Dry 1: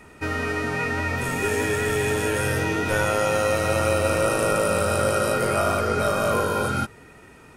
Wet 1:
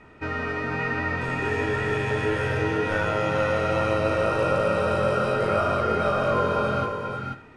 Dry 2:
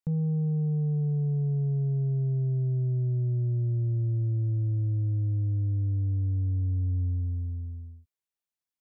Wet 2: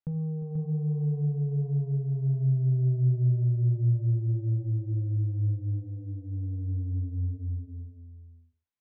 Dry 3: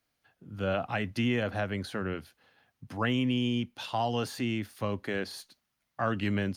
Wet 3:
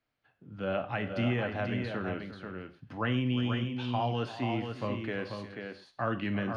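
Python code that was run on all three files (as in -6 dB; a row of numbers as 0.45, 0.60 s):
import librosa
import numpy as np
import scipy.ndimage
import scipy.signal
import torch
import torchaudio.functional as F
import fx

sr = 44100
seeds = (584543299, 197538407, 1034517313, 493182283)

y = scipy.signal.sosfilt(scipy.signal.butter(2, 3300.0, 'lowpass', fs=sr, output='sos'), x)
y = fx.echo_multitap(y, sr, ms=(47, 354, 486), db=(-19.0, -14.5, -6.0))
y = fx.rev_gated(y, sr, seeds[0], gate_ms=160, shape='falling', drr_db=8.5)
y = F.gain(torch.from_numpy(y), -2.5).numpy()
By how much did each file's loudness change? -1.5, -0.5, -1.5 LU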